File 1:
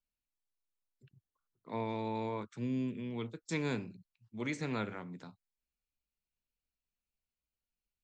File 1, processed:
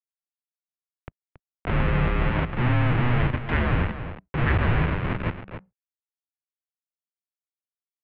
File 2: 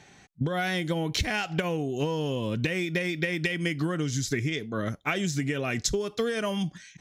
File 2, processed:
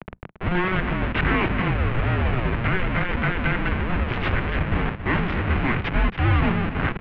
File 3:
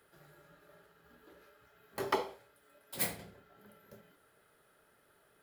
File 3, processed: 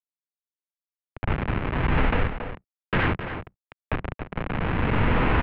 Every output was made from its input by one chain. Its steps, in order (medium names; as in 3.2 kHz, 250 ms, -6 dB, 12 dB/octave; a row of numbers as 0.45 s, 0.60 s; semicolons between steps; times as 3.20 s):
spectral levelling over time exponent 0.6; recorder AGC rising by 8.7 dB/s; Schmitt trigger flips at -28.5 dBFS; peak limiter -27 dBFS; high-pass 140 Hz 12 dB/octave; hum notches 60/120/180 Hz; crossover distortion -58.5 dBFS; on a send: delay 277 ms -11.5 dB; on the sum: mistuned SSB -370 Hz 230–3000 Hz; dynamic bell 630 Hz, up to -5 dB, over -48 dBFS, Q 0.89; peak normalisation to -9 dBFS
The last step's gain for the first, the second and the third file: +12.0 dB, +12.0 dB, +17.0 dB